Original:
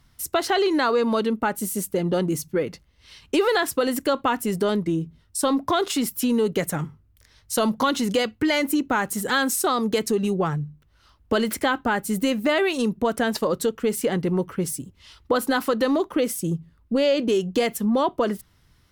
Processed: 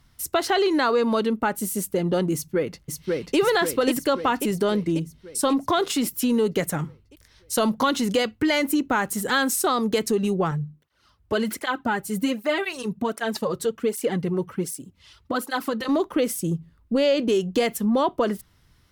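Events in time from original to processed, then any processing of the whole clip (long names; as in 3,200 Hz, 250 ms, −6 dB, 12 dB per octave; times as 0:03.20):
0:02.34–0:03.37: delay throw 540 ms, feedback 60%, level −2 dB
0:10.51–0:15.89: through-zero flanger with one copy inverted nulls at 1.3 Hz, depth 4.5 ms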